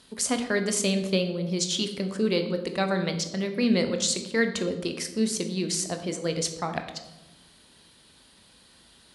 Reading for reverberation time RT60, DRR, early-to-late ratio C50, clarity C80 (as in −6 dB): 1.1 s, 6.0 dB, 9.0 dB, 12.0 dB